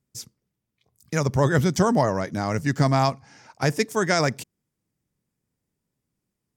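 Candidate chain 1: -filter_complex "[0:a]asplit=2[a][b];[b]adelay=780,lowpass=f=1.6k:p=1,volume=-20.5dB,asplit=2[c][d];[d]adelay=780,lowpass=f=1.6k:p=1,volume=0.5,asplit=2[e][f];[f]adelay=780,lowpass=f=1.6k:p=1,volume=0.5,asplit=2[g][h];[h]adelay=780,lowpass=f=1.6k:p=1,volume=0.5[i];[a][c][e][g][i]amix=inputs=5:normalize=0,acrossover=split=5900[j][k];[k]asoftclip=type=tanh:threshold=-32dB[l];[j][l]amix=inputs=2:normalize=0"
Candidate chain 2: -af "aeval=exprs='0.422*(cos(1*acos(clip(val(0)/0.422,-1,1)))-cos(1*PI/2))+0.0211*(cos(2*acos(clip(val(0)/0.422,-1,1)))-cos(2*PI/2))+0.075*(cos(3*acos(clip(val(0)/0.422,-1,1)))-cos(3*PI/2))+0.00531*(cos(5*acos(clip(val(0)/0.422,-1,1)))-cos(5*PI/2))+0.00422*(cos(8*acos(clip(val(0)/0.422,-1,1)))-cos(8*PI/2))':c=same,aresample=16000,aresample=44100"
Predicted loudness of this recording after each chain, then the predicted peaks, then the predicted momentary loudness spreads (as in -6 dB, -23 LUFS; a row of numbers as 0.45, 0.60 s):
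-23.0, -26.0 LUFS; -8.0, -6.5 dBFS; 19, 8 LU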